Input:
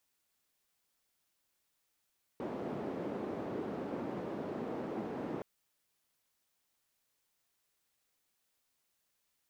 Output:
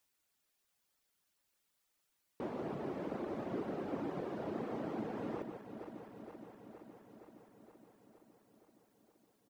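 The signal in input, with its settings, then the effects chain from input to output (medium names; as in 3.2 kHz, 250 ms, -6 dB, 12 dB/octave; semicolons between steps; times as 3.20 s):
noise band 260–340 Hz, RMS -39.5 dBFS 3.02 s
backward echo that repeats 234 ms, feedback 83%, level -10 dB; reverb removal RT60 0.95 s; echo from a far wall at 25 m, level -7 dB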